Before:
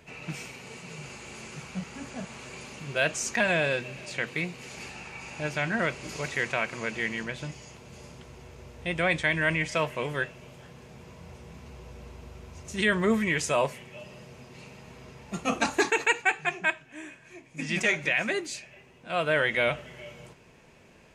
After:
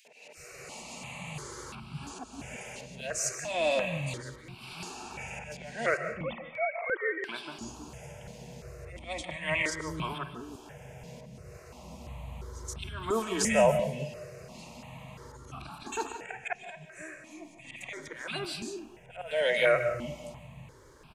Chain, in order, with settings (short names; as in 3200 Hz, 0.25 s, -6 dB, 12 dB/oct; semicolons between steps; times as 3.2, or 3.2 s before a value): 5.97–7.24 sine-wave speech; auto swell 0.325 s; three bands offset in time highs, mids, lows 50/370 ms, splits 290/2200 Hz; reverb RT60 0.45 s, pre-delay 0.105 s, DRR 10 dB; step phaser 2.9 Hz 330–1900 Hz; gain +5 dB